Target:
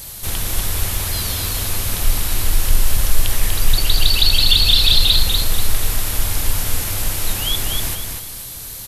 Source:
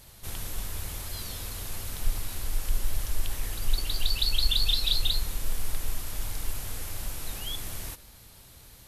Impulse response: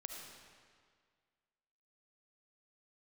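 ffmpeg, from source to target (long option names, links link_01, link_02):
-filter_complex "[0:a]apsyclip=19.5dB,acrossover=split=4400[link_01][link_02];[link_02]acompressor=threshold=-26dB:ratio=4:attack=1:release=60[link_03];[link_01][link_03]amix=inputs=2:normalize=0,highshelf=frequency=4800:gain=10.5,asplit=2[link_04][link_05];[link_05]aecho=0:1:243|486|729|972:0.562|0.18|0.0576|0.0184[link_06];[link_04][link_06]amix=inputs=2:normalize=0,volume=-7dB"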